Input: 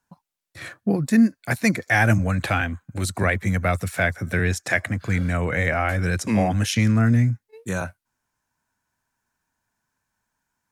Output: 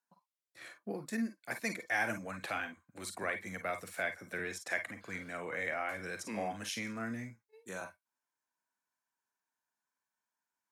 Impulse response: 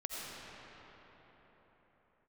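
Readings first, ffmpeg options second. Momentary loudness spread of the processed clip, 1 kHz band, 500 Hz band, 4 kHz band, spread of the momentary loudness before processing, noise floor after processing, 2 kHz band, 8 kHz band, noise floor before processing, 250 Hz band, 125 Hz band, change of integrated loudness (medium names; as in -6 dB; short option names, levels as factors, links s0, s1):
10 LU, -13.0 dB, -14.0 dB, -13.0 dB, 11 LU, under -85 dBFS, -13.0 dB, -13.0 dB, -80 dBFS, -20.0 dB, -29.5 dB, -16.5 dB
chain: -filter_complex "[0:a]highpass=310[s0];[1:a]atrim=start_sample=2205,afade=t=out:st=0.14:d=0.01,atrim=end_sample=6615,asetrate=74970,aresample=44100[s1];[s0][s1]afir=irnorm=-1:irlink=0,volume=0.562"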